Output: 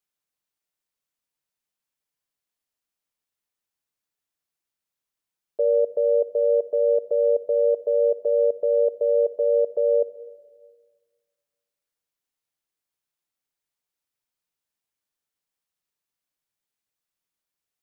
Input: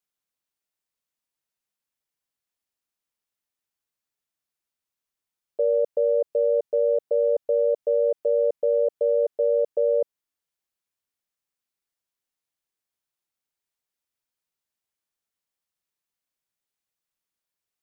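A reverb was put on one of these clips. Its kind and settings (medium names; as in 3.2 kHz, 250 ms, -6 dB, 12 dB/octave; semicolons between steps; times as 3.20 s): simulated room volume 1600 m³, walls mixed, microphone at 0.42 m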